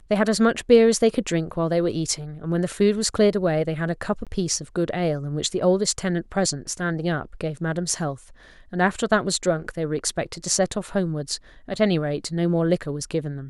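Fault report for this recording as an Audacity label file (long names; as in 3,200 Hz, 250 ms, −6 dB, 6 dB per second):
4.250000	4.270000	drop-out 17 ms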